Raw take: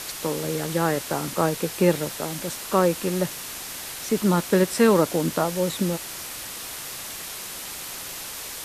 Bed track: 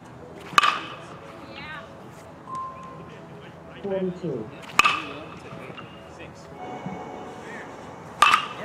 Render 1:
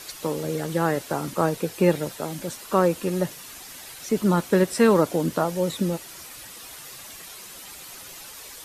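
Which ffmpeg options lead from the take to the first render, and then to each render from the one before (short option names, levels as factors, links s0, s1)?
-af "afftdn=nr=9:nf=-36"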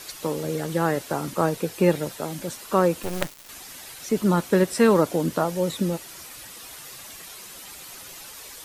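-filter_complex "[0:a]asettb=1/sr,asplit=3[s0][s1][s2];[s0]atrim=end=3.034[s3];[s1]atrim=start=3.03:end=3.49,asetpts=PTS-STARTPTS,afade=t=in:d=0.004:c=qsin,afade=t=out:st=0.456:d=0.004:c=qsin,acrusher=bits=3:dc=4:mix=0:aa=0.000001[s4];[s2]atrim=start=3.486[s5];[s3][s4]acrossfade=d=0.004:c1=hsin:c2=qsin[s6];[s6][s5]acrossfade=d=0.004:c1=qsin:c2=hsin"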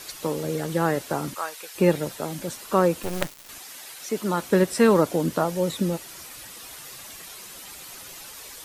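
-filter_complex "[0:a]asplit=3[s0][s1][s2];[s0]afade=t=out:st=1.34:d=0.02[s3];[s1]highpass=1200,afade=t=in:st=1.34:d=0.02,afade=t=out:st=1.74:d=0.02[s4];[s2]afade=t=in:st=1.74:d=0.02[s5];[s3][s4][s5]amix=inputs=3:normalize=0,asettb=1/sr,asplit=3[s6][s7][s8];[s6]atrim=end=3.584[s9];[s7]atrim=start=3.58:end=4.42,asetpts=PTS-STARTPTS,afade=t=in:d=0.004:c=qsin,afade=t=out:st=0.836:d=0.004:c=qsin,highpass=f=420:p=1[s10];[s8]atrim=start=4.416[s11];[s9][s10]acrossfade=d=0.004:c1=hsin:c2=qsin[s12];[s12][s11]acrossfade=d=0.004:c1=qsin:c2=hsin"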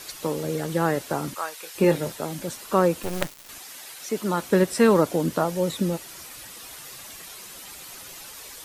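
-filter_complex "[0:a]asettb=1/sr,asplit=3[s0][s1][s2];[s0]atrim=end=1.604[s3];[s1]atrim=start=1.6:end=2.13,asetpts=PTS-STARTPTS,afade=t=in:d=0.004:c=qsin,afade=t=out:st=0.526:d=0.004:c=qsin,asplit=2[s4][s5];[s5]adelay=25,volume=0.398[s6];[s4][s6]amix=inputs=2:normalize=0,atrim=end_sample=23373[s7];[s2]atrim=start=2.126[s8];[s3][s7]acrossfade=d=0.004:c1=hsin:c2=qsin[s9];[s9][s8]acrossfade=d=0.004:c1=qsin:c2=hsin"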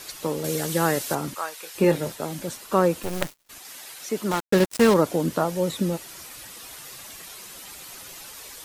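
-filter_complex "[0:a]asettb=1/sr,asplit=3[s0][s1][s2];[s0]atrim=end=0.444[s3];[s1]atrim=start=0.44:end=1.15,asetpts=PTS-STARTPTS,afade=t=in:d=0.004:c=qsin,afade=t=out:st=0.706:d=0.004:c=qsin,highshelf=f=3100:g=10.5[s4];[s2]atrim=start=1.146[s5];[s3][s4]acrossfade=d=0.004:c1=hsin:c2=qsin[s6];[s6][s5]acrossfade=d=0.004:c1=qsin:c2=hsin,asettb=1/sr,asplit=3[s7][s8][s9];[s7]atrim=end=1.924[s10];[s8]atrim=start=1.92:end=3.65,asetpts=PTS-STARTPTS,afade=t=in:d=0.004:c=qsin,afade=t=out:st=1.726:d=0.004:c=qsin,agate=range=0.0224:threshold=0.01:ratio=3:release=100:detection=peak[s11];[s9]atrim=start=3.646[s12];[s10][s11]acrossfade=d=0.004:c1=hsin:c2=qsin[s13];[s13][s12]acrossfade=d=0.004:c1=qsin:c2=hsin,asettb=1/sr,asplit=3[s14][s15][s16];[s14]atrim=end=4.314[s17];[s15]atrim=start=4.31:end=4.94,asetpts=PTS-STARTPTS,afade=t=in:d=0.004:c=qsin,afade=t=out:st=0.626:d=0.004:c=qsin,acrusher=bits=3:mix=0:aa=0.5[s18];[s16]atrim=start=4.936[s19];[s17][s18]acrossfade=d=0.004:c1=hsin:c2=qsin[s20];[s20][s19]acrossfade=d=0.004:c1=qsin:c2=hsin"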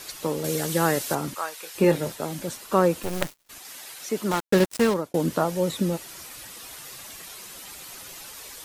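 -filter_complex "[0:a]asplit=2[s0][s1];[s0]atrim=end=5.14,asetpts=PTS-STARTPTS,afade=t=out:st=4.5:d=0.64:c=qsin[s2];[s1]atrim=start=5.14,asetpts=PTS-STARTPTS,afade=t=in:d=0.004:c=hsin[s3];[s2][s3]concat=n=2:v=0:a=1"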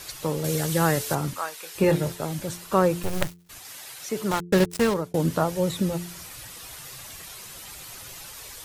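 -af "lowshelf=f=170:t=q:w=1.5:g=6.5,bandreject=f=87.26:t=h:w=4,bandreject=f=174.52:t=h:w=4,bandreject=f=261.78:t=h:w=4,bandreject=f=349.04:t=h:w=4,bandreject=f=436.3:t=h:w=4"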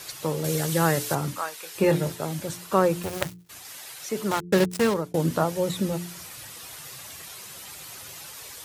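-af "highpass=84,bandreject=f=60:t=h:w=6,bandreject=f=120:t=h:w=6,bandreject=f=180:t=h:w=6,bandreject=f=240:t=h:w=6,bandreject=f=300:t=h:w=6"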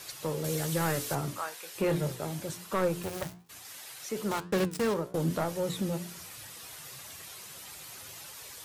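-af "asoftclip=type=tanh:threshold=0.15,flanger=delay=8.7:depth=9.4:regen=82:speed=1.1:shape=triangular"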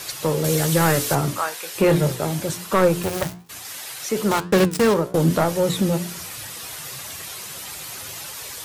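-af "volume=3.76"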